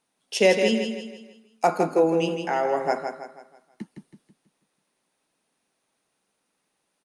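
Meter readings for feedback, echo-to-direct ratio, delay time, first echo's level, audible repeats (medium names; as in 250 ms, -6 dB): 41%, -6.0 dB, 162 ms, -7.0 dB, 4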